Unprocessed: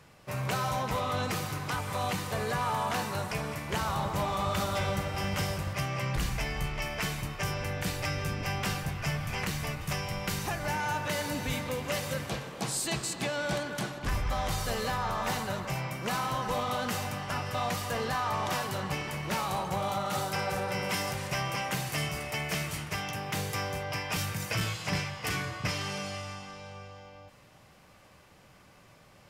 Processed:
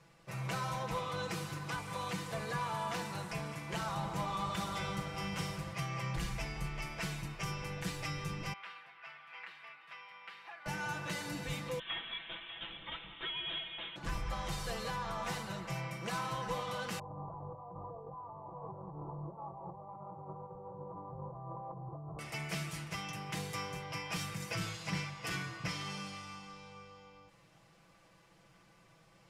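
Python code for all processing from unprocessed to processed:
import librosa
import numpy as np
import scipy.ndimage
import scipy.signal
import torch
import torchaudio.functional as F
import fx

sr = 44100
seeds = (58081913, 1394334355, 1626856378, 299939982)

y = fx.chain(x, sr, fx.highpass(hz=1300.0, slope=12),
    fx.air_absorb(metres=430.0), at=(8.53, 10.66))
y = fx.chain(y, sr, fx.highpass(hz=480.0, slope=12),
    fx.echo_single(ms=595, db=-10.5),
    fx.freq_invert(carrier_hz=3900), at=(11.79, 13.96))
y = fx.chain(y, sr, fx.steep_lowpass(hz=1100.0, slope=72),
    fx.over_compress(threshold_db=-38.0, ratio=-1.0),
    fx.peak_eq(hz=220.0, db=-11.5, octaves=0.47), at=(16.99, 22.19))
y = scipy.signal.sosfilt(scipy.signal.butter(2, 11000.0, 'lowpass', fs=sr, output='sos'), y)
y = y + 0.76 * np.pad(y, (int(6.0 * sr / 1000.0), 0))[:len(y)]
y = F.gain(torch.from_numpy(y), -8.5).numpy()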